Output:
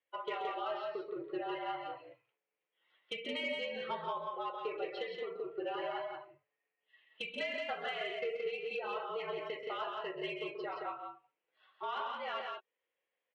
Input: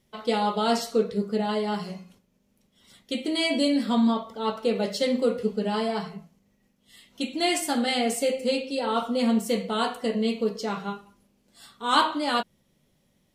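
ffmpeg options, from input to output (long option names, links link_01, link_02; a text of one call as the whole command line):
ffmpeg -i in.wav -filter_complex "[0:a]afftdn=noise_reduction=16:noise_floor=-38,acrossover=split=680[link_01][link_02];[link_02]crystalizer=i=4.5:c=0[link_03];[link_01][link_03]amix=inputs=2:normalize=0,highpass=frequency=520:width_type=q:width=0.5412,highpass=frequency=520:width_type=q:width=1.307,lowpass=frequency=2700:width_type=q:width=0.5176,lowpass=frequency=2700:width_type=q:width=0.7071,lowpass=frequency=2700:width_type=q:width=1.932,afreqshift=-64,acompressor=threshold=-36dB:ratio=12,flanger=delay=1.8:depth=5.2:regen=64:speed=0.23:shape=sinusoidal,asoftclip=type=tanh:threshold=-31.5dB,aecho=1:1:131.2|172:0.355|0.631,volume=4dB" out.wav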